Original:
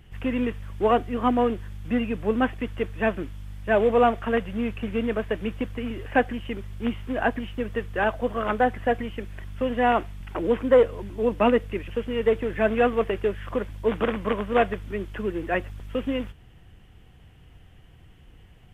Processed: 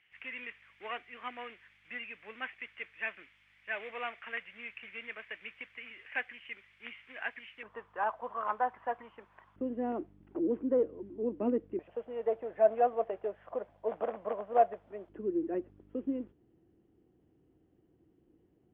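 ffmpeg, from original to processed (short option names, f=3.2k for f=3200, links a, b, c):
-af "asetnsamples=n=441:p=0,asendcmd='7.63 bandpass f 990;9.56 bandpass f 320;11.79 bandpass f 670;15.09 bandpass f 330',bandpass=f=2.2k:t=q:w=4.1:csg=0"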